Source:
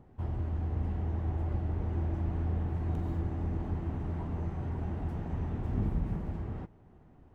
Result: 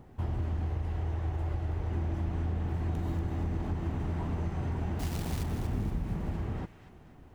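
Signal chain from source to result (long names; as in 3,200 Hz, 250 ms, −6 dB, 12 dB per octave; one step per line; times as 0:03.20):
0:04.99–0:05.43: floating-point word with a short mantissa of 2 bits
high-shelf EQ 2,200 Hz +8.5 dB
downward compressor, threshold −32 dBFS, peak gain reduction 7 dB
0:00.66–0:01.91: parametric band 220 Hz −14 dB 0.39 octaves
delay with a high-pass on its return 237 ms, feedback 44%, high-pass 1,700 Hz, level −8 dB
level +4 dB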